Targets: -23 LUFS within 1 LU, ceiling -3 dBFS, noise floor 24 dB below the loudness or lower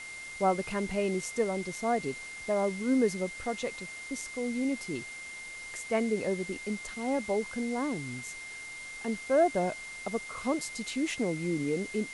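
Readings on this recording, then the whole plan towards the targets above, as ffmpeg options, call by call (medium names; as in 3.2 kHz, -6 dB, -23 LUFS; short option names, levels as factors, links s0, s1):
steady tone 2.1 kHz; tone level -41 dBFS; noise floor -43 dBFS; noise floor target -56 dBFS; loudness -32.0 LUFS; peak level -15.0 dBFS; loudness target -23.0 LUFS
-> -af "bandreject=f=2100:w=30"
-af "afftdn=nr=13:nf=-43"
-af "volume=2.82"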